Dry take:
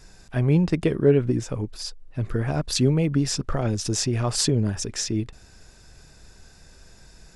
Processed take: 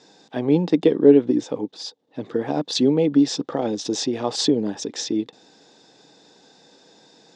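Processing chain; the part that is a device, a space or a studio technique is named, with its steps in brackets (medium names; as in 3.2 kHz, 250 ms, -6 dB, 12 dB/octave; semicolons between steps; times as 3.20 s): television speaker (cabinet simulation 180–6700 Hz, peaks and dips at 290 Hz +10 dB, 480 Hz +9 dB, 830 Hz +9 dB, 1.4 kHz -5 dB, 2.4 kHz -4 dB, 3.6 kHz +10 dB); trim -1 dB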